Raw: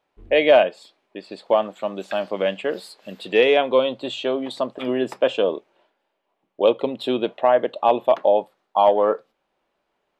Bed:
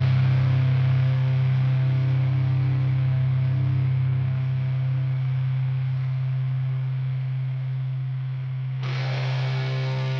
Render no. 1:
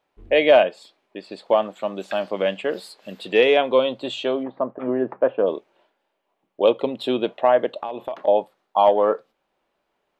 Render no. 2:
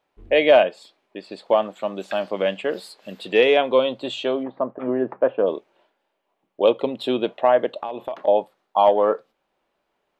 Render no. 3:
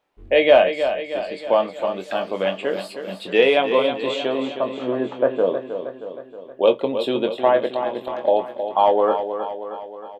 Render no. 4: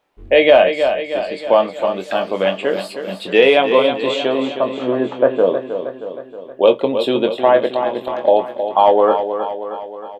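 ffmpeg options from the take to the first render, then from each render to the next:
-filter_complex "[0:a]asplit=3[s0][s1][s2];[s0]afade=t=out:st=4.42:d=0.02[s3];[s1]lowpass=f=1600:w=0.5412,lowpass=f=1600:w=1.3066,afade=t=in:st=4.42:d=0.02,afade=t=out:st=5.46:d=0.02[s4];[s2]afade=t=in:st=5.46:d=0.02[s5];[s3][s4][s5]amix=inputs=3:normalize=0,asettb=1/sr,asplit=3[s6][s7][s8];[s6]atrim=end=7.784[s9];[s7]atrim=start=7.78:end=8.28,asetpts=PTS-STARTPTS,afade=t=in:d=0.004:c=qsin,afade=t=out:st=0.496:d=0.004:c=qsin,acompressor=threshold=0.0631:ratio=16:attack=3.2:release=140:knee=1:detection=peak[s10];[s8]atrim=start=8.276[s11];[s9][s10]acrossfade=d=0.004:c1=hsin:c2=qsin[s12];[s12][s11]acrossfade=d=0.004:c1=qsin:c2=hsin"
-af anull
-filter_complex "[0:a]asplit=2[s0][s1];[s1]adelay=22,volume=0.398[s2];[s0][s2]amix=inputs=2:normalize=0,asplit=2[s3][s4];[s4]aecho=0:1:315|630|945|1260|1575|1890|2205:0.355|0.202|0.115|0.0657|0.0375|0.0213|0.0122[s5];[s3][s5]amix=inputs=2:normalize=0"
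-af "volume=1.78,alimiter=limit=0.891:level=0:latency=1"

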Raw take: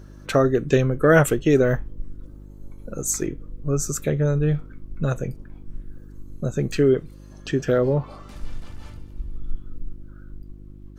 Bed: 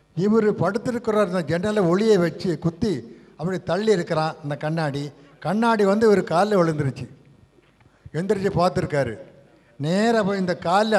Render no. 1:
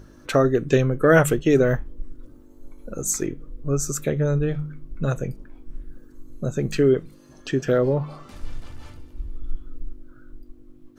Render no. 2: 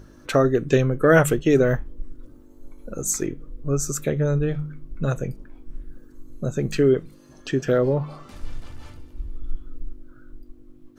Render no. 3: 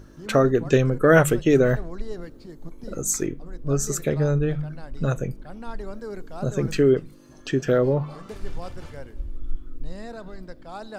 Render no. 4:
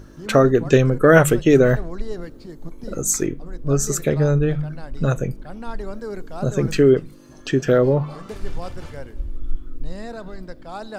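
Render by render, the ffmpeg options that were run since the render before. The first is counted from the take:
-af "bandreject=f=50:t=h:w=4,bandreject=f=100:t=h:w=4,bandreject=f=150:t=h:w=4,bandreject=f=200:t=h:w=4"
-af anull
-filter_complex "[1:a]volume=0.112[s0];[0:a][s0]amix=inputs=2:normalize=0"
-af "volume=1.58,alimiter=limit=0.891:level=0:latency=1"

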